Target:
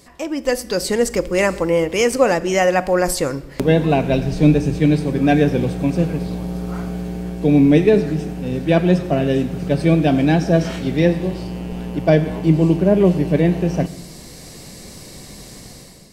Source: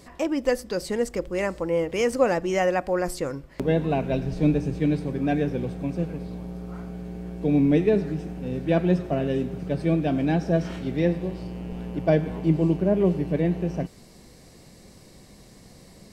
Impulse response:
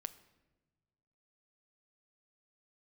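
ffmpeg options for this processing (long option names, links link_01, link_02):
-filter_complex "[0:a]dynaudnorm=framelen=210:gausssize=5:maxgain=11.5dB,asplit=2[link_01][link_02];[1:a]atrim=start_sample=2205,highshelf=frequency=2600:gain=8.5[link_03];[link_02][link_03]afir=irnorm=-1:irlink=0,volume=10dB[link_04];[link_01][link_04]amix=inputs=2:normalize=0,volume=-11dB"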